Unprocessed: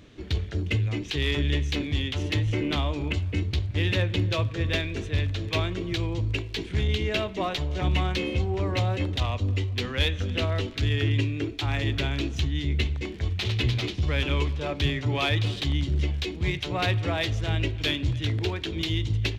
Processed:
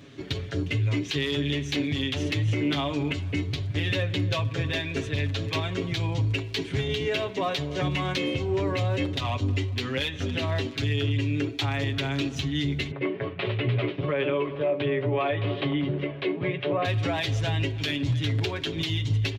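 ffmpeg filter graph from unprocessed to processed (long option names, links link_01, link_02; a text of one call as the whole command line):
ffmpeg -i in.wav -filter_complex "[0:a]asettb=1/sr,asplit=3[link_01][link_02][link_03];[link_01]atrim=end=12.914[link_04];[link_02]atrim=start=12.91:end=16.85,asetpts=PTS-STARTPTS,afade=type=in:duration=0.004:curve=qsin,afade=type=out:start_time=3.936:duration=0.004:curve=qsin,highpass=frequency=120:width=0.5412,highpass=frequency=120:width=1.3066,equalizer=frequency=230:width_type=q:width=4:gain=-4,equalizer=frequency=400:width_type=q:width=4:gain=8,equalizer=frequency=590:width_type=q:width=4:gain=10,equalizer=frequency=1100:width_type=q:width=4:gain=5,lowpass=frequency=2700:width=0.5412,lowpass=frequency=2700:width=1.3066,asplit=2[link_05][link_06];[link_06]adelay=17,volume=-11dB[link_07];[link_05][link_07]amix=inputs=2:normalize=0,atrim=end_sample=173754[link_08];[link_03]atrim=start=16.846[link_09];[link_04][link_08]acrossfade=duration=0.004:curve1=hsin:curve2=qsin[link_10];[link_10][link_09]acrossfade=duration=0.004:curve1=qsin:curve2=hsin,highpass=87,aecho=1:1:7.3:0.75,alimiter=limit=-19.5dB:level=0:latency=1:release=153,volume=2dB" out.wav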